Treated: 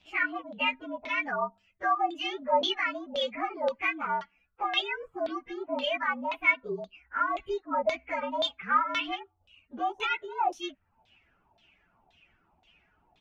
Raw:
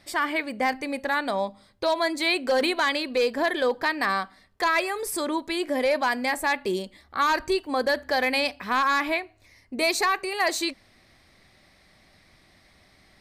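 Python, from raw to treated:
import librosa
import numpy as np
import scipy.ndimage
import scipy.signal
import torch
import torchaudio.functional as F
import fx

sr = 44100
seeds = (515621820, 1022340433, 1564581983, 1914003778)

y = fx.partial_stretch(x, sr, pct=114)
y = fx.dereverb_blind(y, sr, rt60_s=0.54)
y = fx.filter_lfo_lowpass(y, sr, shape='saw_down', hz=1.9, low_hz=730.0, high_hz=3800.0, q=5.4)
y = F.gain(torch.from_numpy(y), -6.5).numpy()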